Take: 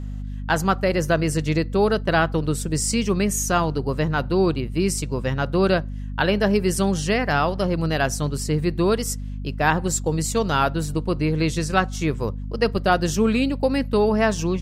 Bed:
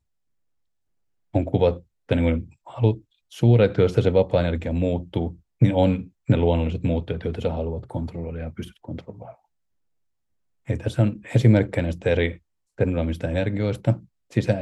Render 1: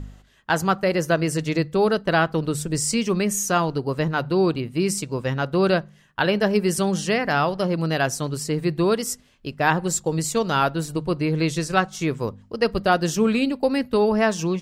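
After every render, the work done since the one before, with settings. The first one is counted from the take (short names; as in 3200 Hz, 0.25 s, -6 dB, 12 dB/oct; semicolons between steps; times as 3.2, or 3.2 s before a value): de-hum 50 Hz, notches 5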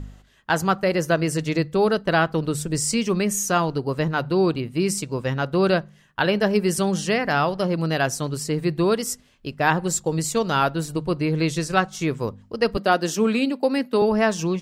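12.77–14.02 HPF 190 Hz 24 dB/oct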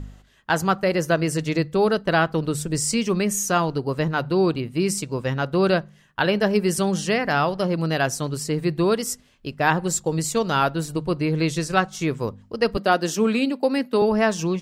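nothing audible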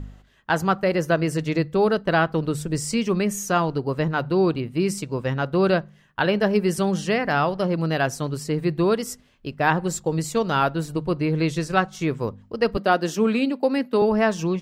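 bell 8700 Hz -6.5 dB 2 oct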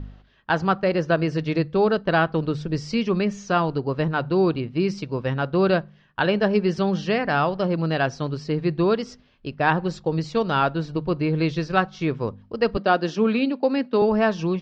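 steep low-pass 5200 Hz 36 dB/oct; notch 2000 Hz, Q 19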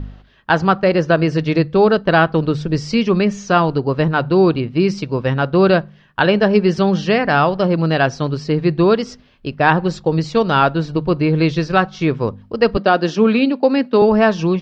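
gain +7 dB; limiter -1 dBFS, peak gain reduction 2.5 dB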